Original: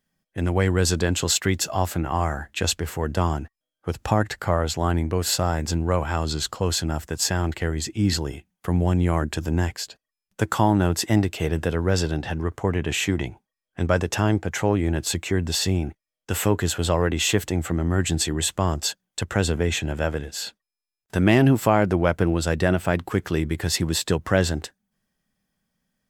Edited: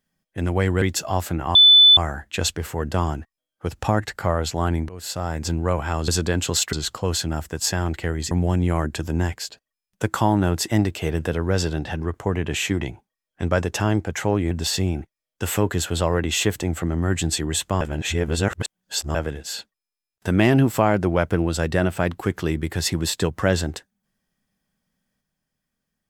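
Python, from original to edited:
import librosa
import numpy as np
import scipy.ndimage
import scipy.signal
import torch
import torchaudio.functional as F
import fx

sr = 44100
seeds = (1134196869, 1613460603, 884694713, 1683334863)

y = fx.edit(x, sr, fx.move(start_s=0.82, length_s=0.65, to_s=6.31),
    fx.insert_tone(at_s=2.2, length_s=0.42, hz=3500.0, db=-7.5),
    fx.fade_in_from(start_s=5.12, length_s=0.6, floor_db=-18.5),
    fx.cut(start_s=7.89, length_s=0.8),
    fx.cut(start_s=14.89, length_s=0.5),
    fx.reverse_span(start_s=18.69, length_s=1.34), tone=tone)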